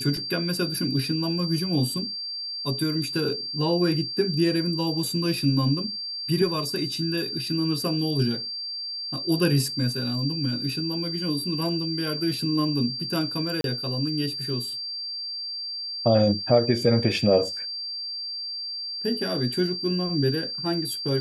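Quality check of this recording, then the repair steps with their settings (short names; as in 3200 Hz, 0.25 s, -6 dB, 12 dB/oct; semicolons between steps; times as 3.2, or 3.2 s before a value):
tone 4700 Hz -30 dBFS
13.61–13.64 gap 32 ms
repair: notch 4700 Hz, Q 30; interpolate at 13.61, 32 ms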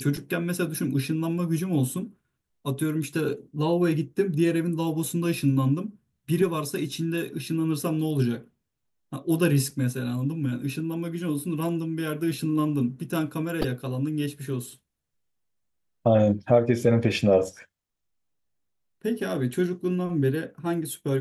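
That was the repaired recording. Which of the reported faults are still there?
none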